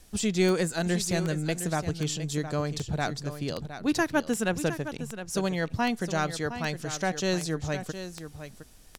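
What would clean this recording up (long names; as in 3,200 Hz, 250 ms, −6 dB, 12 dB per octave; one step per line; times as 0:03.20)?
click removal
echo removal 713 ms −11 dB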